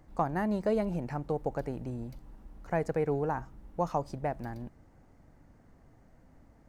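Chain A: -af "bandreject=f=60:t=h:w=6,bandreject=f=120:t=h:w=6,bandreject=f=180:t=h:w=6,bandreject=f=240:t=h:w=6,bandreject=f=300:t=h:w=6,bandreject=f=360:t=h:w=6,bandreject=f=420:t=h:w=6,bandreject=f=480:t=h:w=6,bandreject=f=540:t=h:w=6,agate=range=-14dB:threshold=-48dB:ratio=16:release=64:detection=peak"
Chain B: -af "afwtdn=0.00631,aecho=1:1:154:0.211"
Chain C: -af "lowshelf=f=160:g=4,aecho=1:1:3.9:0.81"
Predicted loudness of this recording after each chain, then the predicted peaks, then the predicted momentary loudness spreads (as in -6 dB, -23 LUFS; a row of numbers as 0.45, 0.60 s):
-33.5, -33.5, -31.0 LUFS; -16.5, -16.0, -14.5 dBFS; 14, 13, 14 LU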